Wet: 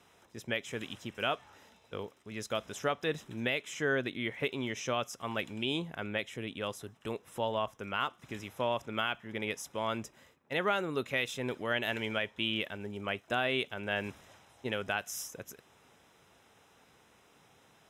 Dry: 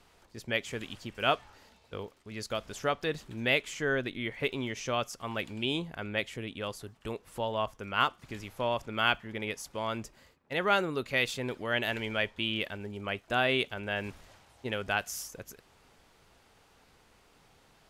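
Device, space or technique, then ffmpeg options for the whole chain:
PA system with an anti-feedback notch: -af "highpass=100,asuperstop=centerf=4500:order=8:qfactor=6.8,alimiter=limit=-19dB:level=0:latency=1:release=251"

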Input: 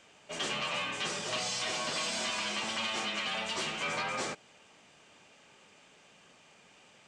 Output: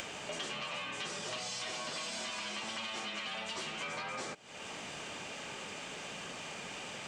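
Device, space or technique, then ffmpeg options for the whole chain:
upward and downward compression: -af "acompressor=mode=upward:threshold=-39dB:ratio=2.5,acompressor=threshold=-45dB:ratio=6,volume=6.5dB"

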